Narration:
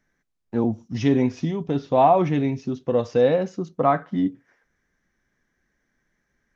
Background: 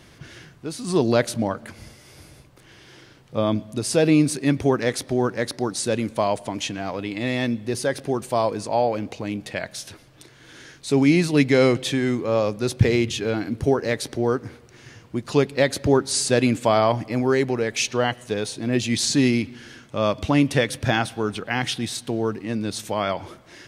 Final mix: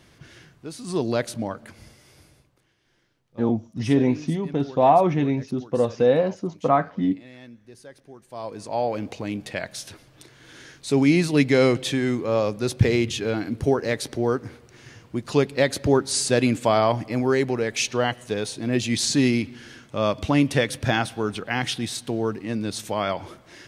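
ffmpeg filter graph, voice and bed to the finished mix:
-filter_complex "[0:a]adelay=2850,volume=0dB[a];[1:a]volume=15dB,afade=t=out:st=2.02:d=0.73:silence=0.158489,afade=t=in:st=8.27:d=0.79:silence=0.1[b];[a][b]amix=inputs=2:normalize=0"

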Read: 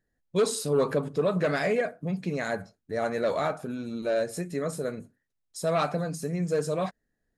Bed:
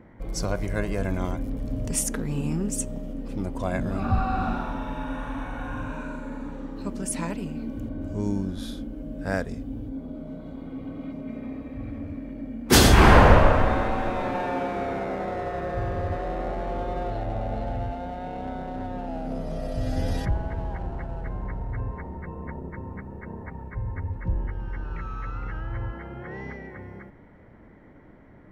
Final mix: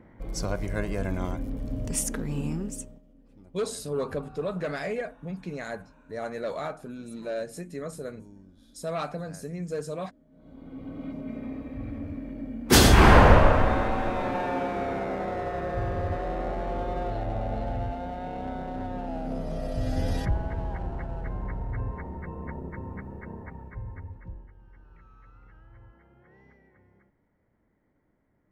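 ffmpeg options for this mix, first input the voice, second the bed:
-filter_complex "[0:a]adelay=3200,volume=-5.5dB[a];[1:a]volume=20dB,afade=t=out:st=2.45:d=0.56:silence=0.0891251,afade=t=in:st=10.31:d=0.76:silence=0.0749894,afade=t=out:st=23.08:d=1.39:silence=0.105925[b];[a][b]amix=inputs=2:normalize=0"

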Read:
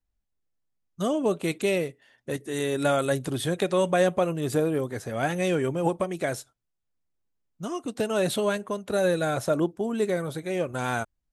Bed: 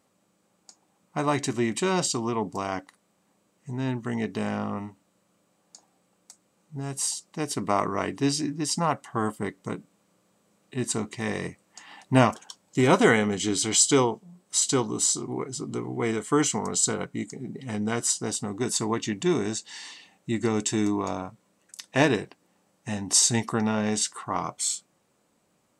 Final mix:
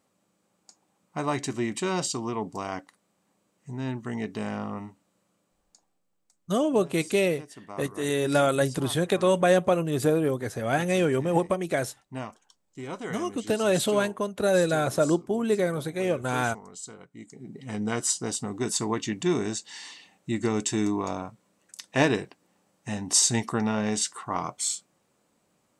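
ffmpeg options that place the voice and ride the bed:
-filter_complex "[0:a]adelay=5500,volume=1.5dB[a];[1:a]volume=13dB,afade=t=out:st=5.24:d=0.8:silence=0.199526,afade=t=in:st=17.11:d=0.74:silence=0.158489[b];[a][b]amix=inputs=2:normalize=0"

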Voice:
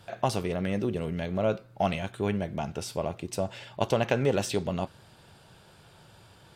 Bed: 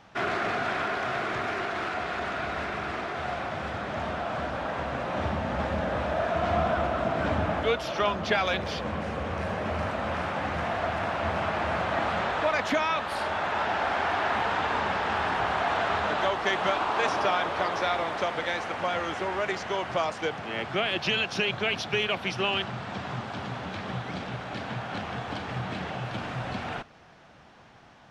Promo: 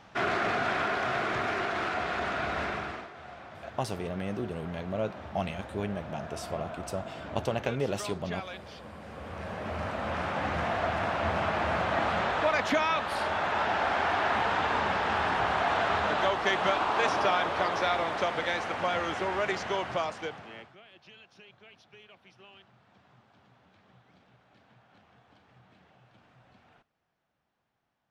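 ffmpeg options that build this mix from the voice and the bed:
-filter_complex "[0:a]adelay=3550,volume=-5dB[a];[1:a]volume=13.5dB,afade=t=out:st=2.68:d=0.42:silence=0.199526,afade=t=in:st=8.99:d=1.48:silence=0.211349,afade=t=out:st=19.69:d=1.07:silence=0.0473151[b];[a][b]amix=inputs=2:normalize=0"

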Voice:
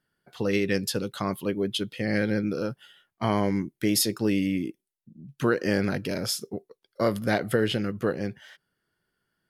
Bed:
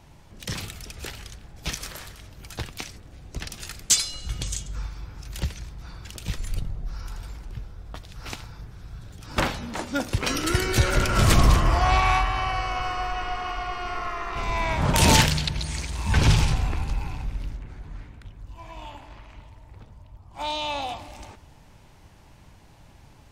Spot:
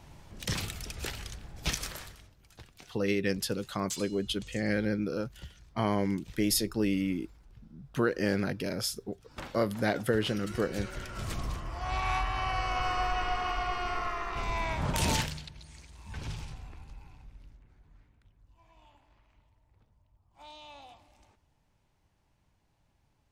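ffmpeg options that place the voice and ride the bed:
-filter_complex "[0:a]adelay=2550,volume=-4dB[a];[1:a]volume=16dB,afade=t=out:st=1.79:d=0.58:silence=0.133352,afade=t=in:st=11.74:d=1.24:silence=0.141254,afade=t=out:st=13.75:d=1.76:silence=0.112202[b];[a][b]amix=inputs=2:normalize=0"

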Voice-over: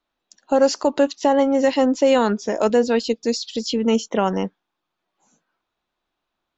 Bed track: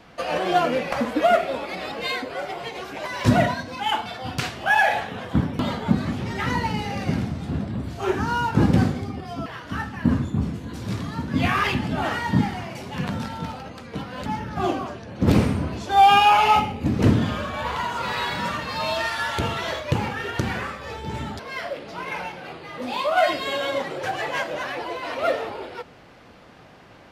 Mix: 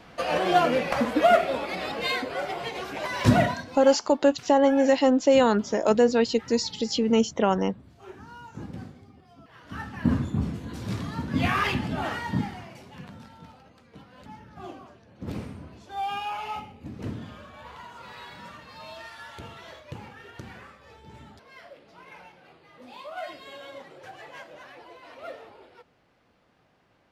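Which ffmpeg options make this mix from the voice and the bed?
-filter_complex "[0:a]adelay=3250,volume=-2.5dB[a];[1:a]volume=17.5dB,afade=t=out:st=3.24:d=0.77:silence=0.0944061,afade=t=in:st=9.47:d=0.6:silence=0.125893,afade=t=out:st=11.7:d=1.39:silence=0.199526[b];[a][b]amix=inputs=2:normalize=0"

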